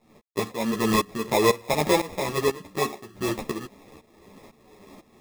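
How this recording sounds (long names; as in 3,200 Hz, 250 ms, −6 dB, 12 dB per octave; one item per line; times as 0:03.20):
aliases and images of a low sample rate 1,500 Hz, jitter 0%
tremolo saw up 2 Hz, depth 90%
a quantiser's noise floor 12 bits, dither none
a shimmering, thickened sound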